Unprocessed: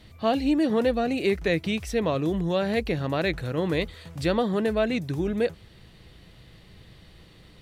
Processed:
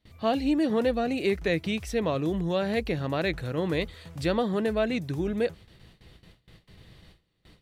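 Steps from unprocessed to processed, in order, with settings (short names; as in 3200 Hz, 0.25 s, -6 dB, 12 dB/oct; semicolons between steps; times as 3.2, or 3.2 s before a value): gate with hold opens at -40 dBFS; gain -2 dB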